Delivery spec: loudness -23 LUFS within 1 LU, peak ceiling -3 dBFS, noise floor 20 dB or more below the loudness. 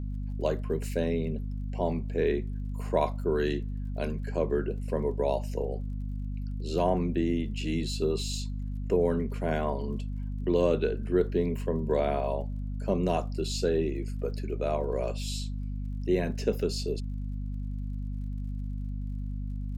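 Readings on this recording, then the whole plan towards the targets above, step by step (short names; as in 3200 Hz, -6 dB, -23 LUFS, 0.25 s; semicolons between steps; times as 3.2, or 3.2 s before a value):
ticks 37/s; hum 50 Hz; harmonics up to 250 Hz; hum level -31 dBFS; loudness -31.0 LUFS; peak -12.5 dBFS; loudness target -23.0 LUFS
-> de-click; de-hum 50 Hz, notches 5; gain +8 dB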